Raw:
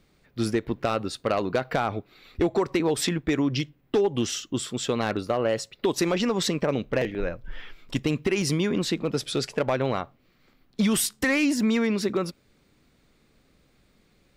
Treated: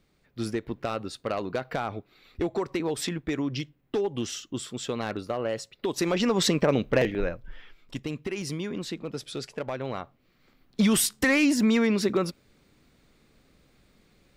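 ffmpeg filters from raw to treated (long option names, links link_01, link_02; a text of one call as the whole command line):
ffmpeg -i in.wav -af "volume=11.5dB,afade=type=in:start_time=5.88:duration=0.6:silence=0.421697,afade=type=out:start_time=7.09:duration=0.49:silence=0.298538,afade=type=in:start_time=9.82:duration=1.02:silence=0.354813" out.wav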